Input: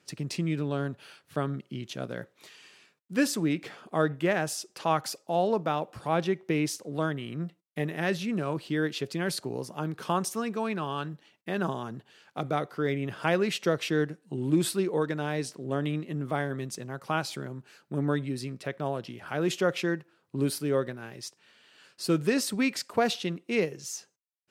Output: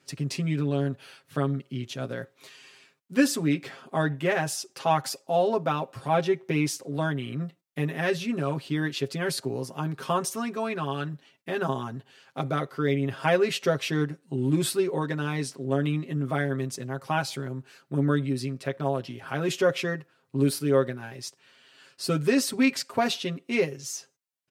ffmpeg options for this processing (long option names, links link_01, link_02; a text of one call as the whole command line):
ffmpeg -i in.wav -af "aecho=1:1:7.5:0.84" out.wav